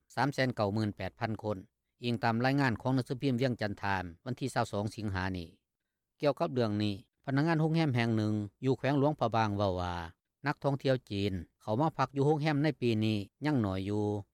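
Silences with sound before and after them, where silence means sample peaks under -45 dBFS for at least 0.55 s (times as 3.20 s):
5.49–6.20 s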